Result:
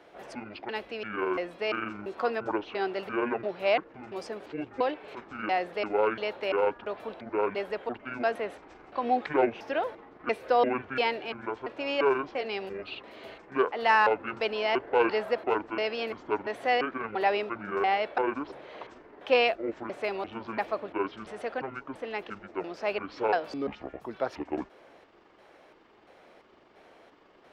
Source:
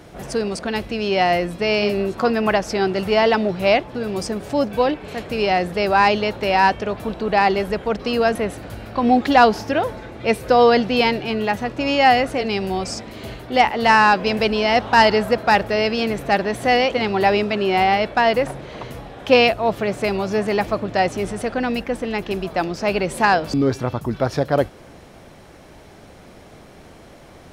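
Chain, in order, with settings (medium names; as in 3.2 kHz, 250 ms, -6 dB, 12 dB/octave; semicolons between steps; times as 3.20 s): pitch shift switched off and on -11 st, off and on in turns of 343 ms; three-band isolator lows -21 dB, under 320 Hz, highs -15 dB, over 4 kHz; trim -8 dB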